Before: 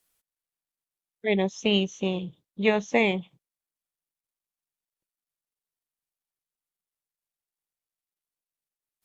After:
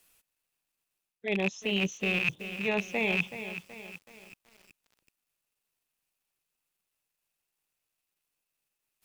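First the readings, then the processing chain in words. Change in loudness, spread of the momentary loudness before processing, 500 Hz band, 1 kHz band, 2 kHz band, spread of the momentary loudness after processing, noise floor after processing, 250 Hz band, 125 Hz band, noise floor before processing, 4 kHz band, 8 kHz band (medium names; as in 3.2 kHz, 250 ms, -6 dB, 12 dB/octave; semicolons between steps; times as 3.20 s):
-4.0 dB, 11 LU, -7.5 dB, -6.5 dB, +1.0 dB, 17 LU, -85 dBFS, -6.0 dB, -4.5 dB, under -85 dBFS, -4.0 dB, no reading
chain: rattle on loud lows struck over -35 dBFS, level -18 dBFS; peaking EQ 2.6 kHz +9 dB 0.2 oct; reverse; compression 16:1, threshold -33 dBFS, peak gain reduction 19 dB; reverse; bit-crushed delay 376 ms, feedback 55%, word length 9-bit, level -10.5 dB; trim +7.5 dB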